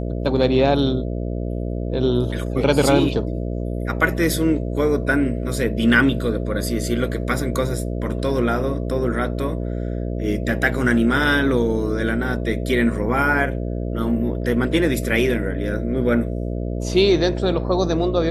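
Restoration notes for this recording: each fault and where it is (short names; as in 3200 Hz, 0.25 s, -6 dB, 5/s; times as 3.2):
buzz 60 Hz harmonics 11 -25 dBFS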